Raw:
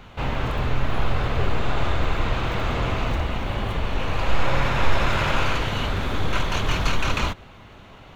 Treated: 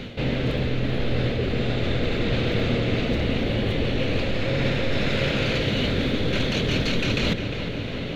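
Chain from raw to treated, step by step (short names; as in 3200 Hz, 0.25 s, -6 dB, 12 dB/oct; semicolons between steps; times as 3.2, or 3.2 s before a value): graphic EQ 125/250/500/1000/2000/4000 Hz +8/+11/+12/-11/+7/+11 dB; reverse; compressor 6:1, threshold -26 dBFS, peak gain reduction 16 dB; reverse; darkening echo 0.354 s, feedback 76%, low-pass 4100 Hz, level -9.5 dB; gain +4.5 dB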